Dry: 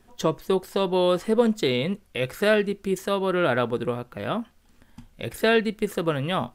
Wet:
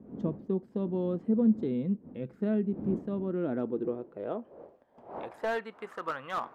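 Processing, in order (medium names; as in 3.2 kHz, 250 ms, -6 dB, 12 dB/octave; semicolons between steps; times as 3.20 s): wind noise 470 Hz -39 dBFS; band-pass sweep 220 Hz -> 1.2 kHz, 3.23–5.84 s; slew-rate limiter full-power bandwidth 47 Hz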